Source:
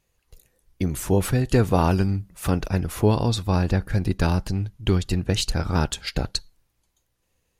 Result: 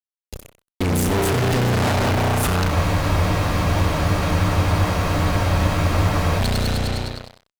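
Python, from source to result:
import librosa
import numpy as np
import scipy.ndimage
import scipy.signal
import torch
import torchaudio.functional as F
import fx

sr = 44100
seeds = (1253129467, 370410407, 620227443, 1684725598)

p1 = fx.rev_spring(x, sr, rt60_s=2.1, pass_ms=(33,), chirp_ms=70, drr_db=-4.0)
p2 = fx.fuzz(p1, sr, gain_db=40.0, gate_db=-42.0)
p3 = p2 + fx.echo_single(p2, sr, ms=90, db=-14.0, dry=0)
p4 = fx.spec_freeze(p3, sr, seeds[0], at_s=2.71, hold_s=3.68)
y = p4 * 10.0 ** (-5.0 / 20.0)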